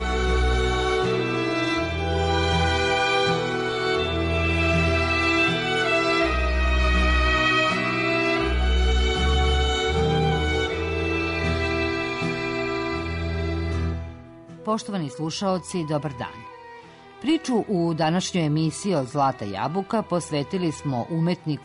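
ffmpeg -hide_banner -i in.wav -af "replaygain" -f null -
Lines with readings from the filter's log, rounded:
track_gain = +4.3 dB
track_peak = 0.185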